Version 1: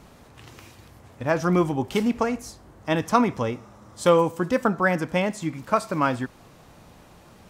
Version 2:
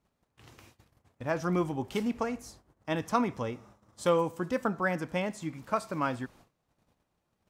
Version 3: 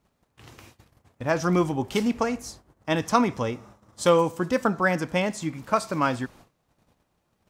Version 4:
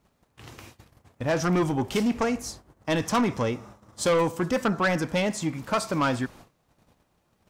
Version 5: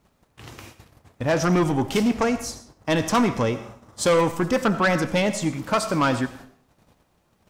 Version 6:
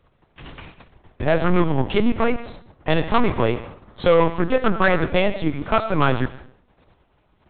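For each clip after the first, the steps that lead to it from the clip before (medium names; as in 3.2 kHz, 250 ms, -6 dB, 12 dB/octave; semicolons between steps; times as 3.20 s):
gate -46 dBFS, range -21 dB; trim -8 dB
dynamic bell 5.6 kHz, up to +5 dB, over -51 dBFS, Q 0.83; trim +6.5 dB
saturation -21 dBFS, distortion -9 dB; trim +3 dB
reverberation RT60 0.50 s, pre-delay 50 ms, DRR 13 dB; trim +3.5 dB
LPC vocoder at 8 kHz pitch kept; trim +3.5 dB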